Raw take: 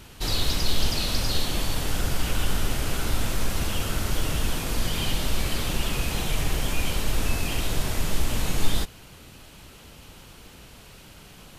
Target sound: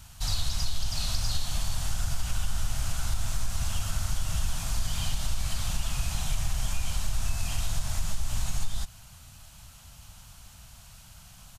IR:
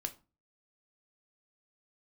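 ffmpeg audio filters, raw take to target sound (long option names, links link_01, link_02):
-filter_complex "[0:a]acrossover=split=9900[link_01][link_02];[link_02]acompressor=threshold=-47dB:ratio=4:attack=1:release=60[link_03];[link_01][link_03]amix=inputs=2:normalize=0,firequalizer=gain_entry='entry(100,0);entry(390,-27);entry(660,-6);entry(1400,-5);entry(2000,-9);entry(6600,2);entry(12000,-1)':delay=0.05:min_phase=1,acompressor=threshold=-21dB:ratio=6"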